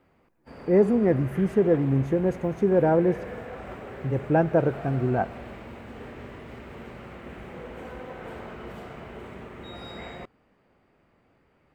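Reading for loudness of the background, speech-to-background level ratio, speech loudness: −40.5 LKFS, 17.0 dB, −23.5 LKFS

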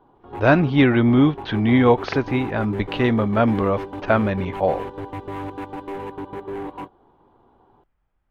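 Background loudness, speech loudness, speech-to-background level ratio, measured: −33.0 LKFS, −19.5 LKFS, 13.5 dB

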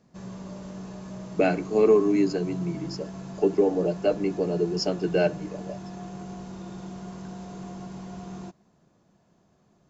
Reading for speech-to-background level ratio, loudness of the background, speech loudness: 14.5 dB, −39.5 LKFS, −25.0 LKFS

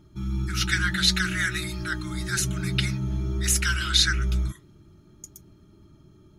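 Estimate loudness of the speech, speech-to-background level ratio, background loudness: −25.5 LKFS, 4.5 dB, −30.0 LKFS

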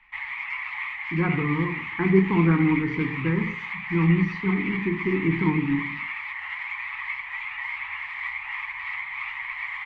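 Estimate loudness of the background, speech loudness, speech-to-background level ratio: −31.0 LKFS, −24.5 LKFS, 6.5 dB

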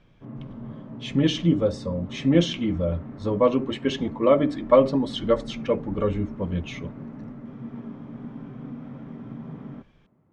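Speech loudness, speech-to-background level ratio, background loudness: −24.0 LKFS, 14.5 dB, −38.5 LKFS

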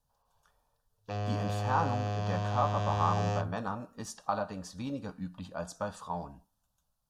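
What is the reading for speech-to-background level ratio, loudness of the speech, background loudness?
−2.0 dB, −36.0 LKFS, −34.0 LKFS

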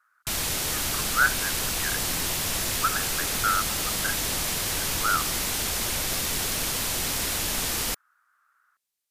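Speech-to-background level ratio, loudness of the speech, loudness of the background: −4.0 dB, −29.5 LKFS, −25.5 LKFS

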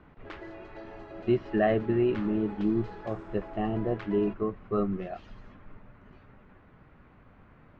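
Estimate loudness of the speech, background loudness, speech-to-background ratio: −29.5 LKFS, −45.5 LKFS, 16.0 dB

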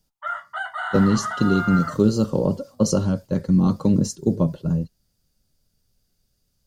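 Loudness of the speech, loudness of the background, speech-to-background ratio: −21.5 LKFS, −29.0 LKFS, 7.5 dB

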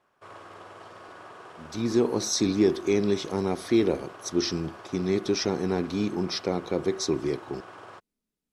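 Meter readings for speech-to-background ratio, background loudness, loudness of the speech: 18.5 dB, −45.5 LKFS, −27.0 LKFS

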